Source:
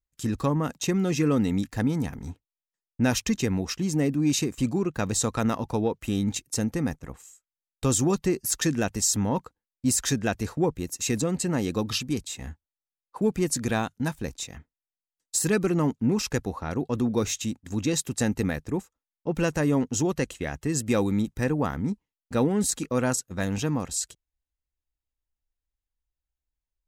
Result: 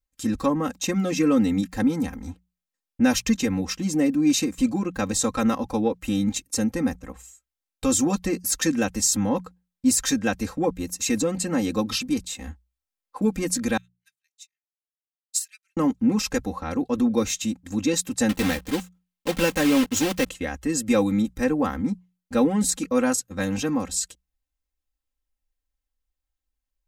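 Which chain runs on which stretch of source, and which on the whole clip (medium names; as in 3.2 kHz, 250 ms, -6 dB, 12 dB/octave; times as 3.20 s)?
13.77–15.77 s: inverse Chebyshev high-pass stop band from 780 Hz, stop band 50 dB + upward expansion 2.5:1, over -49 dBFS
18.29–20.31 s: block-companded coder 3-bit + peaking EQ 2.9 kHz +4 dB 1 oct
whole clip: hum notches 60/120/180 Hz; comb 3.8 ms, depth 88%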